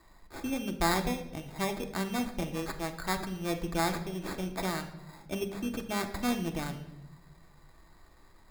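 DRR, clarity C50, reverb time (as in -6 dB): 4.5 dB, 11.0 dB, 0.90 s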